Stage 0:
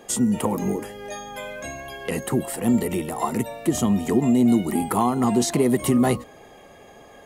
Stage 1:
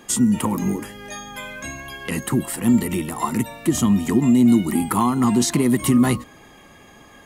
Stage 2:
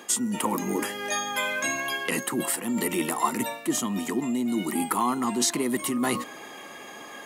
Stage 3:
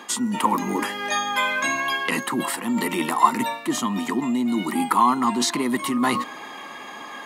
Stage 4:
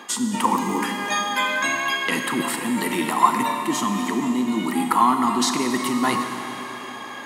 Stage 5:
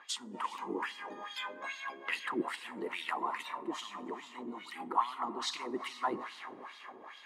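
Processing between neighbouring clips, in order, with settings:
band shelf 560 Hz -9 dB 1.2 oct; gain +3.5 dB
reverse; compressor 5:1, threshold -26 dBFS, peak gain reduction 13.5 dB; reverse; HPF 330 Hz 12 dB/oct; gain +6.5 dB
graphic EQ 125/250/1000/2000/4000 Hz +4/+7/+12/+5/+8 dB; gain -4 dB
Schroeder reverb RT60 3.5 s, combs from 28 ms, DRR 5 dB
harmonic-percussive split harmonic -10 dB; wah 2.4 Hz 350–4000 Hz, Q 2.3; gain -3 dB

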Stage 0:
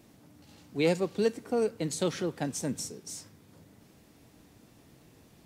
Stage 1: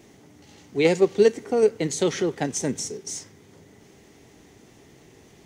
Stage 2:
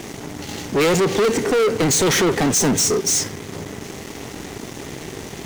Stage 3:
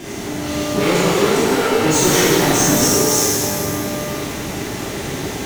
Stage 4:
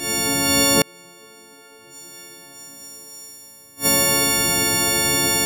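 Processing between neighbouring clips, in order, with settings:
thirty-one-band EQ 400 Hz +10 dB, 800 Hz +4 dB, 2000 Hz +8 dB, 3150 Hz +4 dB, 6300 Hz +8 dB, 12500 Hz -9 dB; in parallel at -1 dB: level quantiser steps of 10 dB
limiter -16.5 dBFS, peak gain reduction 9 dB; sample leveller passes 5; gain +2.5 dB
compressor 2:1, threshold -25 dBFS, peak gain reduction 5.5 dB; shimmer reverb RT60 2.1 s, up +12 st, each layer -8 dB, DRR -10.5 dB; gain -3.5 dB
frequency quantiser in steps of 4 st; flipped gate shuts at -3 dBFS, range -34 dB

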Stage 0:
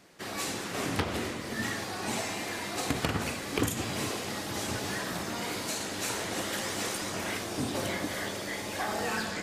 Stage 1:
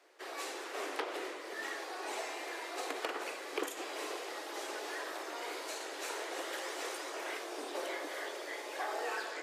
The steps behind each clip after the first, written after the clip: steep high-pass 340 Hz 48 dB/oct; high shelf 3600 Hz -8 dB; gain -4 dB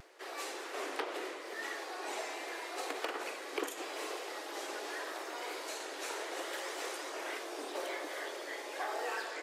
upward compressor, threshold -54 dBFS; vibrato 0.79 Hz 30 cents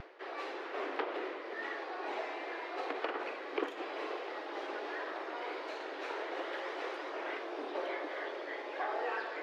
reverse; upward compressor, threshold -42 dBFS; reverse; air absorption 310 m; gain +3 dB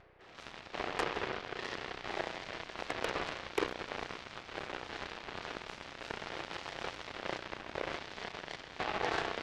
spring tank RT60 3.2 s, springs 32 ms, chirp 70 ms, DRR -1 dB; added harmonics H 5 -33 dB, 7 -14 dB, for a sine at -20 dBFS; gain +1.5 dB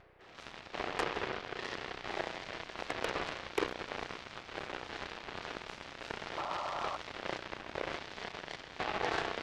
painted sound noise, 6.37–6.97, 550–1400 Hz -39 dBFS

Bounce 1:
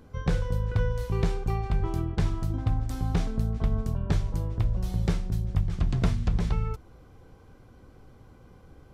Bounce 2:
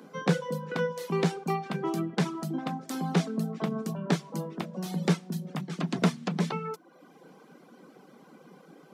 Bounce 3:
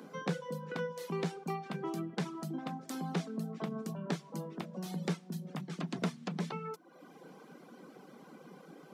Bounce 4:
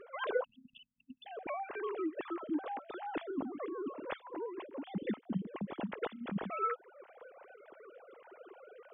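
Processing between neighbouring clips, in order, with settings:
reverb removal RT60 0.78 s; steep high-pass 160 Hz 72 dB/oct; gain +6 dB
compressor 1.5:1, threshold -48 dBFS, peak gain reduction 10.5 dB
sine-wave speech; spectral delete 0.44–1.26, 270–2600 Hz; gain +1 dB

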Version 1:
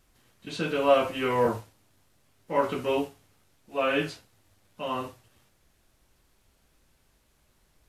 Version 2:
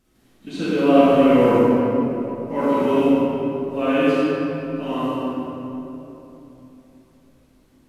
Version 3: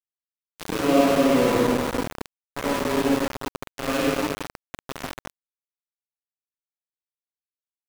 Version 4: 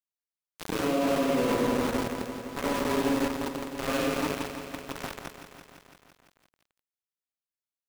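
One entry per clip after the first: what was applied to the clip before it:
bell 250 Hz +11.5 dB 1.2 oct; reverb RT60 3.4 s, pre-delay 32 ms, DRR -8 dB; gain -4 dB
sample gate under -17 dBFS; gain -4.5 dB
limiter -15 dBFS, peak gain reduction 9 dB; lo-fi delay 0.169 s, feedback 80%, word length 8-bit, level -10.5 dB; gain -3.5 dB

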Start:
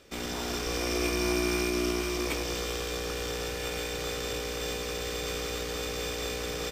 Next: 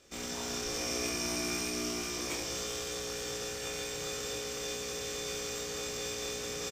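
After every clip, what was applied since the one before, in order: bell 6700 Hz +9 dB 0.73 oct; early reflections 26 ms -3.5 dB, 71 ms -9 dB; gain -7.5 dB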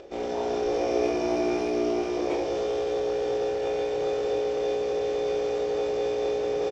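band shelf 530 Hz +14 dB; upward compressor, threshold -41 dBFS; air absorption 210 m; gain +2 dB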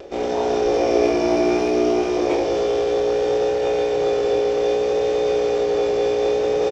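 vibrato 0.64 Hz 20 cents; gain +7.5 dB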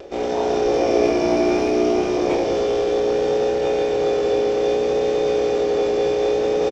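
frequency-shifting echo 0.18 s, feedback 48%, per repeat -88 Hz, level -15 dB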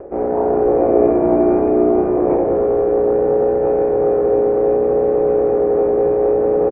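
Bessel low-pass 970 Hz, order 6; gain +5 dB

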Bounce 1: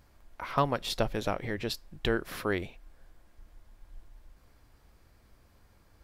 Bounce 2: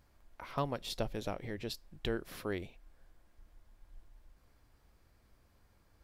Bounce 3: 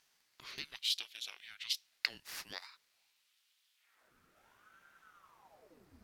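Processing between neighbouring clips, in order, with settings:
dynamic EQ 1400 Hz, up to -5 dB, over -46 dBFS, Q 0.85; gain -6 dB
high-pass sweep 3200 Hz -> 91 Hz, 3.75–4.71; ring modulator with a swept carrier 800 Hz, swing 85%, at 0.41 Hz; gain +5.5 dB

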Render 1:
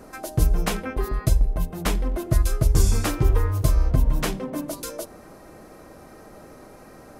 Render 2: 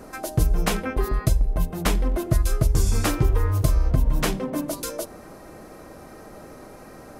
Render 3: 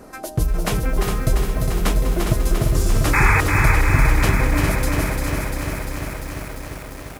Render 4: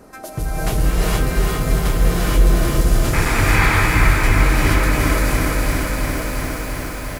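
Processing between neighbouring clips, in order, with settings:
compressor, threshold -17 dBFS, peak gain reduction 6 dB; gain +2.5 dB
painted sound noise, 3.13–3.41, 770–2600 Hz -18 dBFS; feedback echo 0.408 s, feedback 35%, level -6 dB; lo-fi delay 0.346 s, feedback 80%, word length 7-bit, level -5 dB
soft clip -13.5 dBFS, distortion -13 dB; echo 1.096 s -9.5 dB; non-linear reverb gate 0.5 s rising, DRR -6.5 dB; gain -2.5 dB

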